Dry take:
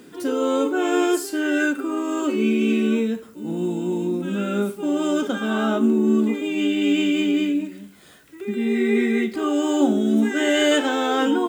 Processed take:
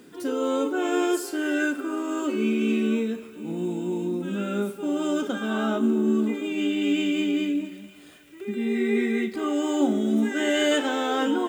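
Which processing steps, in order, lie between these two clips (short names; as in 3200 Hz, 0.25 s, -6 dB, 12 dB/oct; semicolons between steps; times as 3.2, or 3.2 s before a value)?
thinning echo 0.244 s, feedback 70%, high-pass 300 Hz, level -18.5 dB; gain -4 dB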